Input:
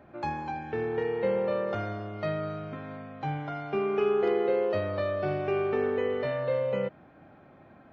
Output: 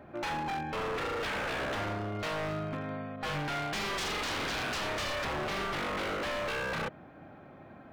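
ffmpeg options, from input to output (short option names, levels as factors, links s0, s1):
-filter_complex "[0:a]asettb=1/sr,asplit=3[s0][s1][s2];[s0]atrim=end=3.164[s3];[s1]atrim=start=3.16:end=5.25,asetpts=PTS-STARTPTS,afade=t=in:d=0.004:c=qsin,afade=t=out:st=2.086:d=0.004:c=qsin,adynamicequalizer=threshold=0.00398:dfrequency=2300:dqfactor=0.88:tfrequency=2300:tqfactor=0.88:attack=5:release=100:ratio=0.375:range=3.5:mode=boostabove:tftype=bell[s4];[s2]atrim=start=5.246[s5];[s3][s4]acrossfade=d=0.004:c1=hsin:c2=qsin[s6];[s6][s5]acrossfade=d=0.004:c1=qsin:c2=hsin,aeval=exprs='0.0251*(abs(mod(val(0)/0.0251+3,4)-2)-1)':c=same,volume=1.41"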